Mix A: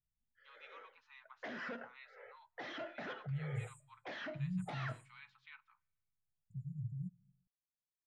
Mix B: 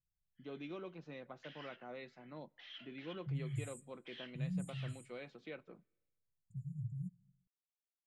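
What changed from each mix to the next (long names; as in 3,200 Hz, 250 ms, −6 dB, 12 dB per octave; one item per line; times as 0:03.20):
first voice: remove Butterworth high-pass 880 Hz 96 dB per octave
background: add resonant band-pass 3,000 Hz, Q 4.4
master: add high-shelf EQ 4,500 Hz +10.5 dB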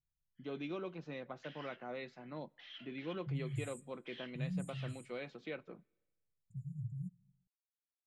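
first voice +4.5 dB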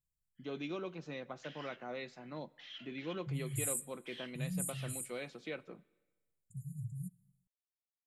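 first voice: send +8.0 dB
second voice: add high-shelf EQ 6,400 Hz +5.5 dB
master: remove high-frequency loss of the air 130 metres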